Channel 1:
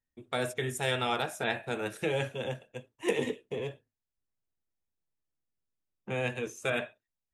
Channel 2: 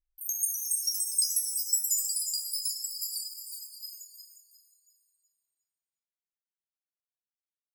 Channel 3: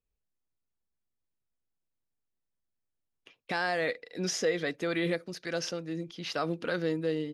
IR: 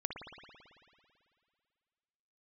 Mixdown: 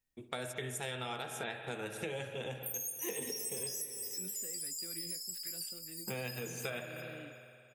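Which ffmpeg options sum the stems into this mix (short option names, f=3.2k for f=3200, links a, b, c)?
-filter_complex "[0:a]highshelf=f=4.5k:g=6.5,volume=-4.5dB,asplit=3[a][b][c];[b]volume=-3.5dB[d];[1:a]alimiter=limit=-24dB:level=0:latency=1,adelay=2450,volume=-1dB,asplit=2[e][f];[f]volume=-3dB[g];[2:a]equalizer=f=2.6k:t=o:w=1.6:g=14,acrossover=split=330[h][i];[i]acompressor=threshold=-42dB:ratio=6[j];[h][j]amix=inputs=2:normalize=0,flanger=delay=7.6:depth=9.8:regen=58:speed=0.85:shape=sinusoidal,volume=-10.5dB[k];[c]apad=whole_len=449677[l];[e][l]sidechaingate=range=-33dB:threshold=-58dB:ratio=16:detection=peak[m];[3:a]atrim=start_sample=2205[n];[d][g]amix=inputs=2:normalize=0[o];[o][n]afir=irnorm=-1:irlink=0[p];[a][m][k][p]amix=inputs=4:normalize=0,acompressor=threshold=-37dB:ratio=6"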